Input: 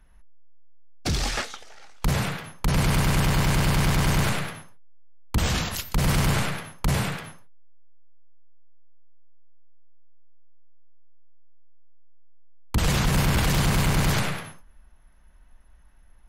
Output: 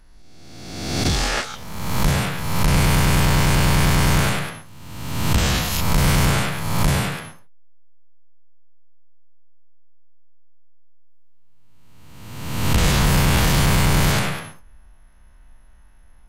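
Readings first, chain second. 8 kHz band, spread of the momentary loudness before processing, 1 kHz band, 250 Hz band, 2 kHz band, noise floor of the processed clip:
+6.0 dB, 11 LU, +6.0 dB, +5.0 dB, +5.5 dB, −47 dBFS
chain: peak hold with a rise ahead of every peak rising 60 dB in 1.34 s
level +2 dB

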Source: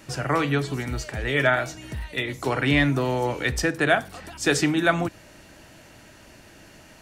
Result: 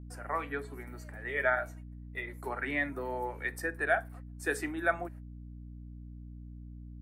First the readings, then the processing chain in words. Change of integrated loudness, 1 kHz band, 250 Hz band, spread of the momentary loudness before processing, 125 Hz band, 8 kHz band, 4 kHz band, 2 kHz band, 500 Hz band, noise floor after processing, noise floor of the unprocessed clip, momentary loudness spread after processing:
−10.5 dB, −8.5 dB, −15.5 dB, 10 LU, −16.0 dB, −16.0 dB, −22.0 dB, −8.0 dB, −10.0 dB, −47 dBFS, −50 dBFS, 18 LU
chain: noise reduction from a noise print of the clip's start 8 dB
high-pass filter 460 Hz 12 dB per octave
noise gate −45 dBFS, range −31 dB
mains hum 60 Hz, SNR 10 dB
flat-topped bell 4,400 Hz −15 dB
level −6.5 dB

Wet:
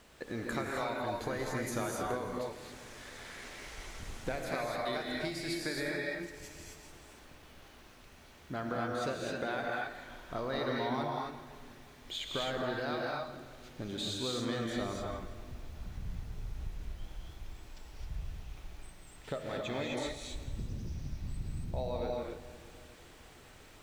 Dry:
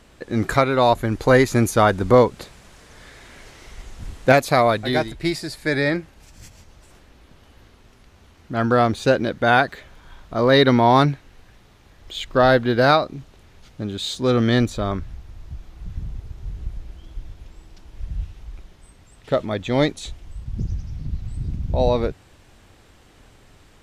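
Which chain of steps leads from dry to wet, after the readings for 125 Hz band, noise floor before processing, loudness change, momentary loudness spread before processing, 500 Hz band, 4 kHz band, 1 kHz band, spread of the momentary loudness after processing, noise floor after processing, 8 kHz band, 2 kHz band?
−18.0 dB, −52 dBFS, −18.5 dB, 19 LU, −17.5 dB, −12.5 dB, −18.0 dB, 19 LU, −56 dBFS, −9.5 dB, −15.5 dB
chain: low-shelf EQ 270 Hz −7 dB
downward compressor 6 to 1, threshold −31 dBFS, peak gain reduction 19.5 dB
bit reduction 11 bits
echo with a time of its own for lows and highs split 460 Hz, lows 357 ms, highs 167 ms, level −14 dB
reverb whose tail is shaped and stops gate 290 ms rising, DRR −2 dB
level −5.5 dB

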